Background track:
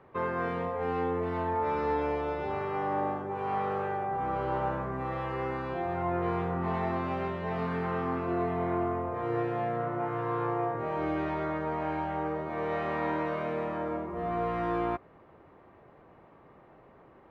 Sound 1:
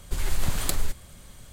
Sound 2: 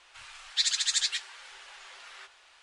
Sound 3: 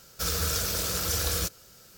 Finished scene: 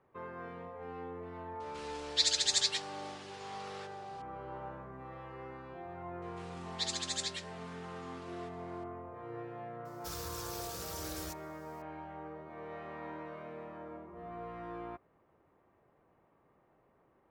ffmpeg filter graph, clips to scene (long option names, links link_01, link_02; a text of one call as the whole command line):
ffmpeg -i bed.wav -i cue0.wav -i cue1.wav -i cue2.wav -filter_complex "[2:a]asplit=2[link_01][link_02];[0:a]volume=-13.5dB[link_03];[link_01]equalizer=frequency=4900:width_type=o:width=0.98:gain=5[link_04];[3:a]alimiter=limit=-18.5dB:level=0:latency=1:release=94[link_05];[link_04]atrim=end=2.62,asetpts=PTS-STARTPTS,volume=-5.5dB,afade=type=in:duration=0.004:curve=hsin,afade=type=out:start_time=2.616:duration=0.004:curve=hsin,adelay=1600[link_06];[link_02]atrim=end=2.62,asetpts=PTS-STARTPTS,volume=-10dB,afade=type=in:duration=0.004:curve=hsin,afade=type=out:start_time=2.616:duration=0.004:curve=hsin,adelay=6220[link_07];[link_05]atrim=end=1.97,asetpts=PTS-STARTPTS,volume=-14dB,afade=type=in:duration=0.004:curve=hsin,afade=type=out:start_time=1.966:duration=0.004:curve=hsin,adelay=9850[link_08];[link_03][link_06][link_07][link_08]amix=inputs=4:normalize=0" out.wav